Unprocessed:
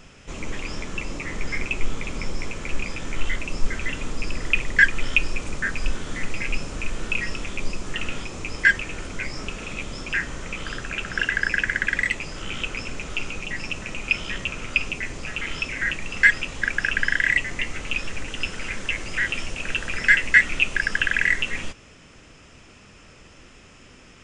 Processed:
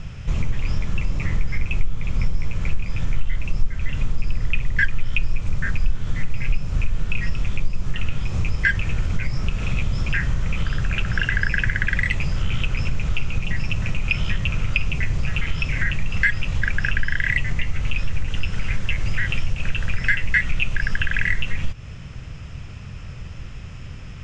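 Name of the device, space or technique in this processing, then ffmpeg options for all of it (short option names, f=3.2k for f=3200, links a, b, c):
jukebox: -af "lowpass=5.6k,lowshelf=f=190:t=q:w=1.5:g=13.5,acompressor=threshold=-21dB:ratio=3,volume=4dB"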